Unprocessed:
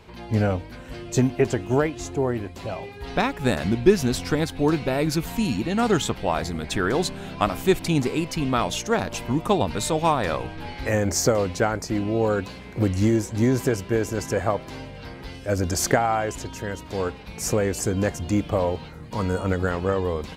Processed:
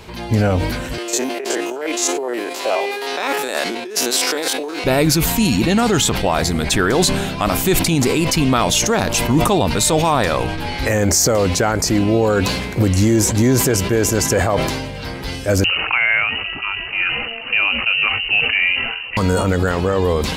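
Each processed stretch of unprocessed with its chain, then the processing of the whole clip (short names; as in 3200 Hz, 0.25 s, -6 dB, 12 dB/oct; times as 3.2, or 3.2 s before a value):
0.98–4.84 stepped spectrum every 50 ms + negative-ratio compressor -29 dBFS + HPF 360 Hz 24 dB/oct
15.64–19.17 inverted band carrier 2900 Hz + air absorption 450 m
whole clip: high shelf 4100 Hz +8 dB; maximiser +14.5 dB; sustainer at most 37 dB/s; gain -5 dB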